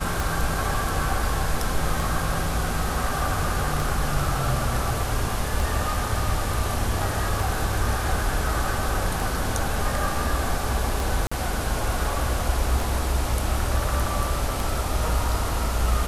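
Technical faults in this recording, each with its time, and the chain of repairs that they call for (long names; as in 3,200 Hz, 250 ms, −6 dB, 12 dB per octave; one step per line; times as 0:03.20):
scratch tick 33 1/3 rpm
0:11.27–0:11.31: drop-out 45 ms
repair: click removal
repair the gap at 0:11.27, 45 ms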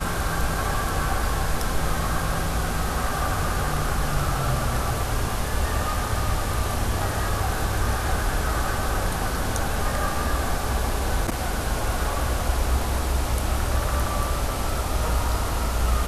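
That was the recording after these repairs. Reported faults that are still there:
none of them is left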